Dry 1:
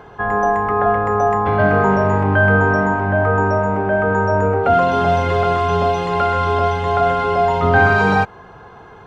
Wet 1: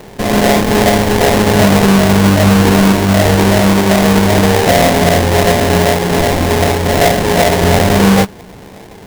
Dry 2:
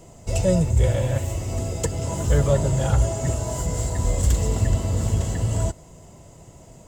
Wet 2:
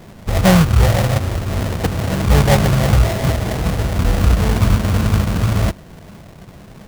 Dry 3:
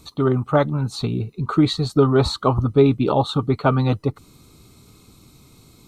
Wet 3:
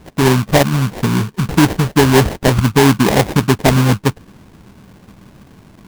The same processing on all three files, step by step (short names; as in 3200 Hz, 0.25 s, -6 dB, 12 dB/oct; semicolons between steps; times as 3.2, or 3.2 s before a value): thirty-one-band EQ 200 Hz +9 dB, 1600 Hz -11 dB, 5000 Hz -11 dB; sample-rate reducer 1300 Hz, jitter 20%; maximiser +7 dB; gain -1 dB